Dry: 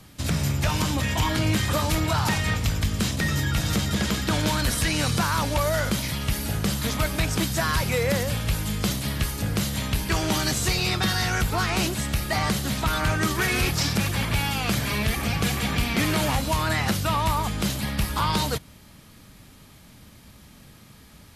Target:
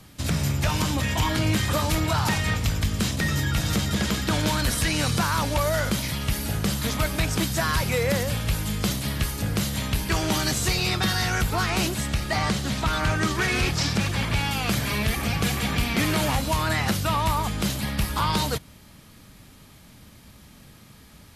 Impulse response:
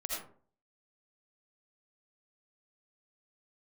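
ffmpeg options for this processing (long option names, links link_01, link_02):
-filter_complex "[0:a]asettb=1/sr,asplit=3[link_01][link_02][link_03];[link_01]atrim=end=12.084[link_04];[link_02]atrim=start=12.08:end=14.51,asetpts=PTS-STARTPTS,afade=type=in:duration=0.004:curve=qsin,afade=type=out:start_time=2.426:duration=0.004:curve=qsin,acrossover=split=8900[link_05][link_06];[link_06]acompressor=threshold=-51dB:ratio=4:attack=1:release=60[link_07];[link_05][link_07]amix=inputs=2:normalize=0[link_08];[link_03]atrim=start=14.506[link_09];[link_04][link_08]acrossfade=duration=0.004:curve1=hsin:curve2=qsin[link_10];[link_10][link_09]acrossfade=duration=0.004:curve1=qsin:curve2=hsin"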